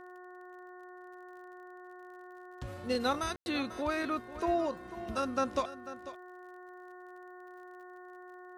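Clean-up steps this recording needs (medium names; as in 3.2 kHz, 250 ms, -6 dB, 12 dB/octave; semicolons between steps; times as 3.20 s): de-click; de-hum 362.8 Hz, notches 5; room tone fill 3.36–3.46 s; inverse comb 494 ms -14 dB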